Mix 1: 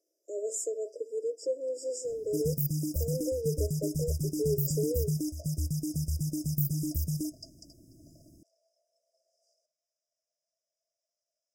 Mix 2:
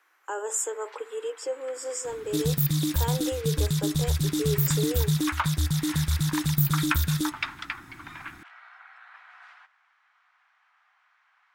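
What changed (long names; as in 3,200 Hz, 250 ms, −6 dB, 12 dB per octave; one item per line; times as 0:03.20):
speech: add high-shelf EQ 5,900 Hz +11 dB
second sound +6.0 dB
master: remove linear-phase brick-wall band-stop 680–4,800 Hz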